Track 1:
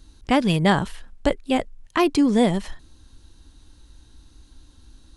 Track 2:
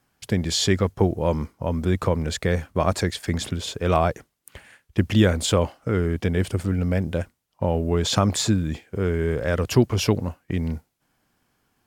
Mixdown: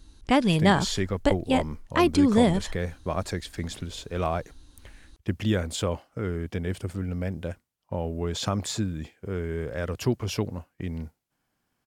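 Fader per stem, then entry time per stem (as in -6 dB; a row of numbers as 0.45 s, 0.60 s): -2.0 dB, -7.5 dB; 0.00 s, 0.30 s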